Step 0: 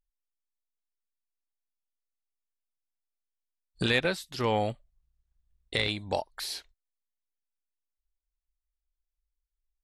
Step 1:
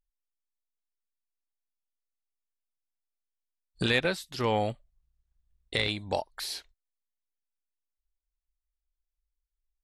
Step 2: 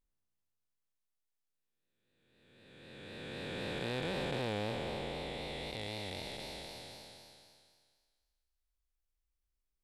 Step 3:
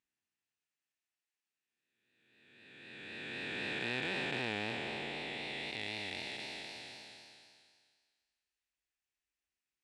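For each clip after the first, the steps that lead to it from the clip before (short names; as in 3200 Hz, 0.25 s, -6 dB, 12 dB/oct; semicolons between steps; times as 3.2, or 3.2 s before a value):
nothing audible
time blur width 1.42 s; vibrato 3.9 Hz 52 cents; gain +1.5 dB
speaker cabinet 150–9000 Hz, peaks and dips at 170 Hz -6 dB, 530 Hz -9 dB, 1100 Hz -4 dB, 1800 Hz +7 dB, 2600 Hz +8 dB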